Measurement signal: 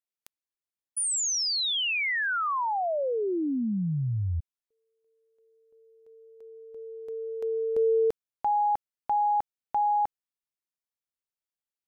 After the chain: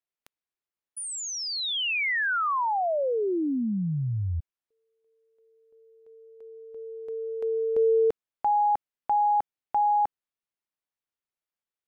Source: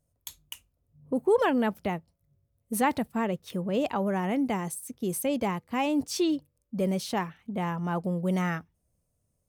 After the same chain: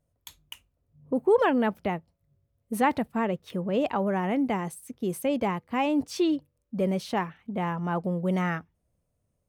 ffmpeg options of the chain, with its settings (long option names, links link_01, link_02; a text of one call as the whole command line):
ffmpeg -i in.wav -af "bass=frequency=250:gain=-2,treble=frequency=4000:gain=-9,volume=2dB" out.wav